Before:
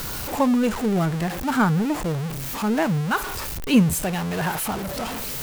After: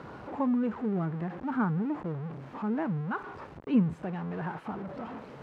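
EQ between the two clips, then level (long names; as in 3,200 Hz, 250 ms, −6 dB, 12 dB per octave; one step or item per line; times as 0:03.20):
dynamic equaliser 620 Hz, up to −7 dB, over −37 dBFS, Q 1.3
Bessel high-pass filter 180 Hz, order 2
low-pass filter 1,100 Hz 12 dB per octave
−5.0 dB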